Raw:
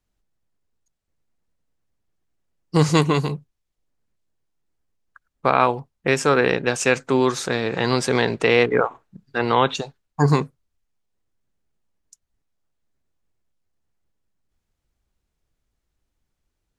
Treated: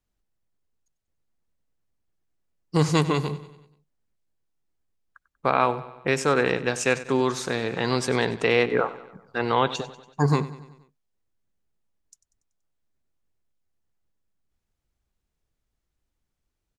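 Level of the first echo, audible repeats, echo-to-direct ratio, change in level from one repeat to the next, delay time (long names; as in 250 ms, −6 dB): −16.5 dB, 4, −15.0 dB, −5.0 dB, 95 ms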